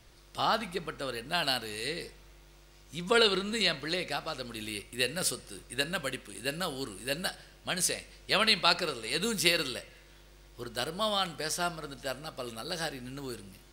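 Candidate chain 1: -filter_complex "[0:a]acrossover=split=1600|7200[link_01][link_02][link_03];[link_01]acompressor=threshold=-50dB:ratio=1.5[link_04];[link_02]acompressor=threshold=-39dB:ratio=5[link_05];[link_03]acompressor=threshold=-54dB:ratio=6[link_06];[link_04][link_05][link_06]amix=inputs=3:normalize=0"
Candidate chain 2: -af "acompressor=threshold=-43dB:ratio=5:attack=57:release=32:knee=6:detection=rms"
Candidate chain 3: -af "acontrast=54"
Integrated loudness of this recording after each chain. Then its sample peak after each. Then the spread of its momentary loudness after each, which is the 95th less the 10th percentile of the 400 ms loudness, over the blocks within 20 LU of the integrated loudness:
−39.5, −40.5, −25.0 LKFS; −18.5, −22.5, −4.0 dBFS; 11, 10, 15 LU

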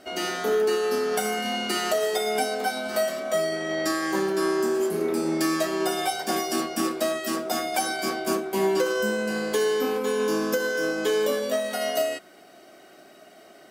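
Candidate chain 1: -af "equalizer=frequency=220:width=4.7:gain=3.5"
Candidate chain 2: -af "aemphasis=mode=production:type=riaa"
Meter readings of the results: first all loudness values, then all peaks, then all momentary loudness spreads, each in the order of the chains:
−25.5, −20.5 LKFS; −10.5, −3.0 dBFS; 3, 6 LU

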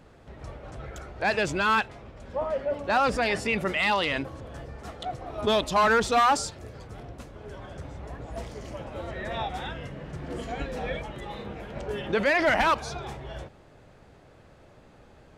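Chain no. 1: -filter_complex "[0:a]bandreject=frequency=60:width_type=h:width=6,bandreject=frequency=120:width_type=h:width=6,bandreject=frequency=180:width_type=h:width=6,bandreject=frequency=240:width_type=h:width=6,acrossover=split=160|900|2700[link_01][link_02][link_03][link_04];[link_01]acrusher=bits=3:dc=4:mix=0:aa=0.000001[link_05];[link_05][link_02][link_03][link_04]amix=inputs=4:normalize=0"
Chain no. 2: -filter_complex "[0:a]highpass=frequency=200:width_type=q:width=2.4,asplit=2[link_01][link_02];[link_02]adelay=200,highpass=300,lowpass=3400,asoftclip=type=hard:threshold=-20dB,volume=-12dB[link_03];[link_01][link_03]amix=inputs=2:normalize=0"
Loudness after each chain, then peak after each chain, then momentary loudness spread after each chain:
−26.5, −25.5 LKFS; −11.0, −10.5 dBFS; 22, 20 LU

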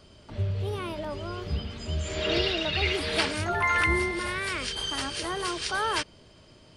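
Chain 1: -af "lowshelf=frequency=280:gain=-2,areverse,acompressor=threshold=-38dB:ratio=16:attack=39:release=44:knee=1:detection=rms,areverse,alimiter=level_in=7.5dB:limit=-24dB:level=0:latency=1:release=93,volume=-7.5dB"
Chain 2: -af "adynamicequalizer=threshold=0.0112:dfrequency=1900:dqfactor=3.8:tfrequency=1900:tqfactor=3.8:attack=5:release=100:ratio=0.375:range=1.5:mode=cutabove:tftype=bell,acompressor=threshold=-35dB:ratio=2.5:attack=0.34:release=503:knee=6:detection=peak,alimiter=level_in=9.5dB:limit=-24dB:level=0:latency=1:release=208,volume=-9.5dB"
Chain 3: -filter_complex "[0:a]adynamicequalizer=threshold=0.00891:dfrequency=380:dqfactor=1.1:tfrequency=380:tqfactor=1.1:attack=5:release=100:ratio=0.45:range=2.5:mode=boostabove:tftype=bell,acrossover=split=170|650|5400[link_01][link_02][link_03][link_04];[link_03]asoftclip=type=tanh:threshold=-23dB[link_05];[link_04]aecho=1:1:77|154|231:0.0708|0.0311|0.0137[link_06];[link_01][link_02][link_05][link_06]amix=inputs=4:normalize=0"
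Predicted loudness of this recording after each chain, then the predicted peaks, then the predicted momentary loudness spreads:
−40.0, −42.0, −28.0 LKFS; −31.5, −33.5, −13.0 dBFS; 4, 3, 9 LU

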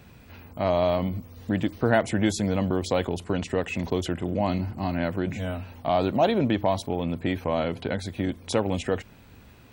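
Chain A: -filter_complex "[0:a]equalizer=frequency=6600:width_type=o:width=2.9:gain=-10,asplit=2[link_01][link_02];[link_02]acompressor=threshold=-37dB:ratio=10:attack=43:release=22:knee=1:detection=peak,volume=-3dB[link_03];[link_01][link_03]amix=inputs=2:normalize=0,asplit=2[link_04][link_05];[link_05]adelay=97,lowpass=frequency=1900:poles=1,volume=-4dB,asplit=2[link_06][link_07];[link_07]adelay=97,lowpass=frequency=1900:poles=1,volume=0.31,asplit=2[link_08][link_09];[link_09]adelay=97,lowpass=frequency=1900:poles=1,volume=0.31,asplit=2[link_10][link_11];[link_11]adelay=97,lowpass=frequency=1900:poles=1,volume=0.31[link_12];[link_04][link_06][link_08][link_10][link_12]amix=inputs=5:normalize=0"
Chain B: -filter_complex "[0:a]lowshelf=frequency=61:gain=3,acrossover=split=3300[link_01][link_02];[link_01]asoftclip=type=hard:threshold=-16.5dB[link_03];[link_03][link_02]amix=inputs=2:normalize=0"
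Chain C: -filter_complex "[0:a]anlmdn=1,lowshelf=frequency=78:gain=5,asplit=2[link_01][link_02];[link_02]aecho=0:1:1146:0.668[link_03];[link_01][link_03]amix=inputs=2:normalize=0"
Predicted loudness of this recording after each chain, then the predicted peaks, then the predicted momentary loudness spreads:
−23.5, −27.0, −25.0 LKFS; −6.5, −14.5, −5.0 dBFS; 6, 7, 8 LU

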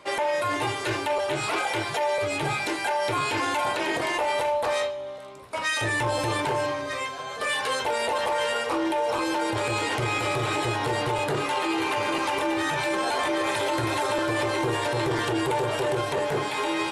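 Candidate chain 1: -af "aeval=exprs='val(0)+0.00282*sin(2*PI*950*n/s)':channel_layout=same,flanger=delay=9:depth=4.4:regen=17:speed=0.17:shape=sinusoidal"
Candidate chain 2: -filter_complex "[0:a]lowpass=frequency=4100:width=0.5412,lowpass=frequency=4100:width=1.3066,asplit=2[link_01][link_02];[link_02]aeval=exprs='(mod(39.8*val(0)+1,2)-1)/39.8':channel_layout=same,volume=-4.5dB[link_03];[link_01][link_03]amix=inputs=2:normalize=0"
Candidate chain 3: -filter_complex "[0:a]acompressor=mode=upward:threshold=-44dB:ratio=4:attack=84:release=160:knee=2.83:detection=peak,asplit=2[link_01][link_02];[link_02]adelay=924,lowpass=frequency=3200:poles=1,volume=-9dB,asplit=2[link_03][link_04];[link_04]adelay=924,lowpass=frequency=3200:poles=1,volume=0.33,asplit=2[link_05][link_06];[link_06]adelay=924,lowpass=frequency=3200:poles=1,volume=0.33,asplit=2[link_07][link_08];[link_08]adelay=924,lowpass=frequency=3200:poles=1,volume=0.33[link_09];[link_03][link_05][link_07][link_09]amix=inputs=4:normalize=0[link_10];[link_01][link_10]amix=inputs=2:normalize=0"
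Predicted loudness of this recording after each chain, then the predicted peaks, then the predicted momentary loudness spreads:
−29.5, −26.0, −25.5 LKFS; −17.5, −15.5, −2.0 dBFS; 3, 2, 2 LU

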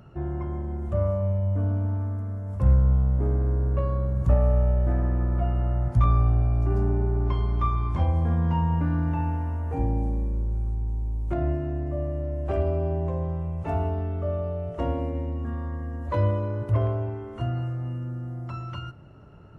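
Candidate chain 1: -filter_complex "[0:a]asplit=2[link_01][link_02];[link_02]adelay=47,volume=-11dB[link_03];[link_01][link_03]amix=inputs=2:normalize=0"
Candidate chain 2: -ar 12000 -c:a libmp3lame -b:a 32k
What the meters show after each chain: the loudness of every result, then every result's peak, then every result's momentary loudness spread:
−26.0, −27.0 LKFS; −8.0, −9.0 dBFS; 11, 10 LU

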